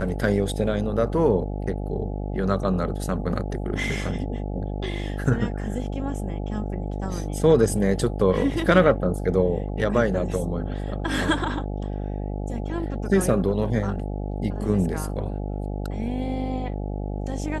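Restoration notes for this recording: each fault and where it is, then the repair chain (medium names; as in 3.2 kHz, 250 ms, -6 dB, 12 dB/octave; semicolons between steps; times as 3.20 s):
buzz 50 Hz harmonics 17 -29 dBFS
5.25 s: dropout 3 ms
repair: de-hum 50 Hz, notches 17; interpolate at 5.25 s, 3 ms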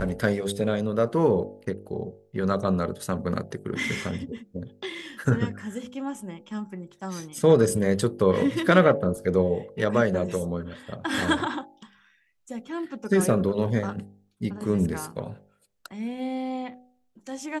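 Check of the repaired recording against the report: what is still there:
nothing left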